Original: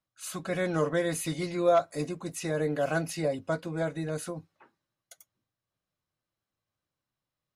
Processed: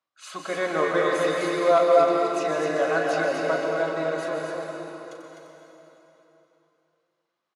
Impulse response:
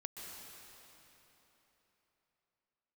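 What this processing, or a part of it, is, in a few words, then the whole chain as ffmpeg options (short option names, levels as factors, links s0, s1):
station announcement: -filter_complex "[0:a]highpass=370,lowpass=4900,equalizer=f=1100:t=o:w=0.48:g=4.5,aecho=1:1:37.9|253.6:0.316|0.562[s0];[1:a]atrim=start_sample=2205[s1];[s0][s1]afir=irnorm=-1:irlink=0,volume=2.66"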